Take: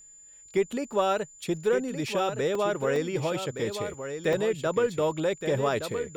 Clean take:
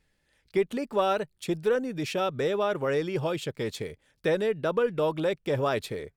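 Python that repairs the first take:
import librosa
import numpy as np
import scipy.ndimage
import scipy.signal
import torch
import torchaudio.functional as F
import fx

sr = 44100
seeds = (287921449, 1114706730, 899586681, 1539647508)

y = fx.notch(x, sr, hz=7100.0, q=30.0)
y = fx.fix_interpolate(y, sr, at_s=(2.55, 2.96, 3.94, 4.33), length_ms=2.5)
y = fx.fix_echo_inverse(y, sr, delay_ms=1168, level_db=-8.5)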